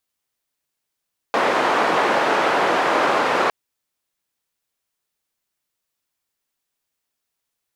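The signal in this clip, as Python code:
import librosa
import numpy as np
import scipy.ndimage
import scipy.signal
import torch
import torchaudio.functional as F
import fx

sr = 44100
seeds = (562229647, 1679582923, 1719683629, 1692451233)

y = fx.band_noise(sr, seeds[0], length_s=2.16, low_hz=390.0, high_hz=1100.0, level_db=-18.5)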